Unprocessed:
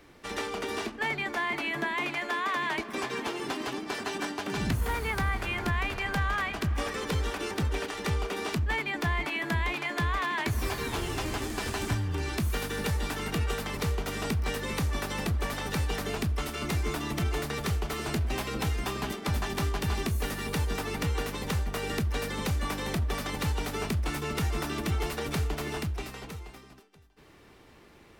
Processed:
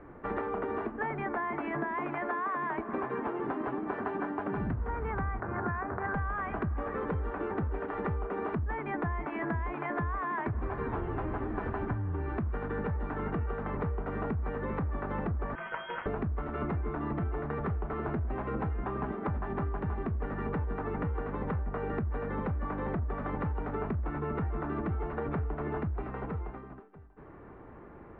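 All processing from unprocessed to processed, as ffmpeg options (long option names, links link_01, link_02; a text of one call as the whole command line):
ffmpeg -i in.wav -filter_complex "[0:a]asettb=1/sr,asplit=3[link_01][link_02][link_03];[link_01]atrim=end=5.404[link_04];[link_02]atrim=start=5.4:end=6.14,asetpts=PTS-STARTPTS,afade=type=in:duration=0.004:curve=qsin,afade=type=out:start_time=0.736:duration=0.004:curve=qsin,highpass=frequency=81:width=0.5412,highpass=frequency=81:width=1.3066,highshelf=frequency=2200:width_type=q:width=3:gain=-8.5,adynamicsmooth=sensitivity=3:basefreq=580[link_05];[link_03]atrim=start=6.136[link_06];[link_04][link_05]acrossfade=duration=0.004:curve1=hsin:curve2=qsin[link_07];[link_07][link_06]acrossfade=duration=0.004:curve1=qsin:curve2=hsin,asettb=1/sr,asplit=3[link_08][link_09][link_10];[link_08]atrim=end=15.554[link_11];[link_09]atrim=start=15.55:end=16.06,asetpts=PTS-STARTPTS,afade=type=in:duration=0.004:curve=qsin,afade=type=out:start_time=0.506:duration=0.004:curve=qsin,equalizer=frequency=270:width_type=o:width=2.7:gain=-10,lowpass=frequency=2800:width_type=q:width=0.5098,lowpass=frequency=2800:width_type=q:width=0.6013,lowpass=frequency=2800:width_type=q:width=0.9,lowpass=frequency=2800:width_type=q:width=2.563,afreqshift=-3300[link_12];[link_10]atrim=start=16.056[link_13];[link_11][link_12]acrossfade=duration=0.004:curve1=hsin:curve2=qsin[link_14];[link_14][link_13]acrossfade=duration=0.004:curve1=qsin:curve2=hsin,lowpass=frequency=1500:width=0.5412,lowpass=frequency=1500:width=1.3066,acompressor=threshold=-37dB:ratio=6,volume=6.5dB" out.wav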